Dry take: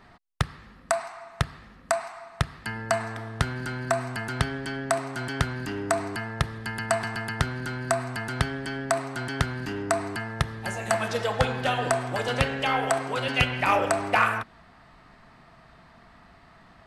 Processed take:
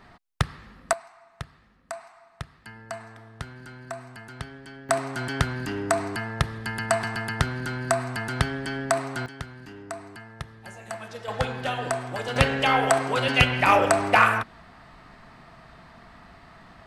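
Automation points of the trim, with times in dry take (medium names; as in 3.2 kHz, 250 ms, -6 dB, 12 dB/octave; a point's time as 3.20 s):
+1.5 dB
from 0.93 s -11 dB
from 4.89 s +1.5 dB
from 9.26 s -11 dB
from 11.28 s -3 dB
from 12.36 s +4 dB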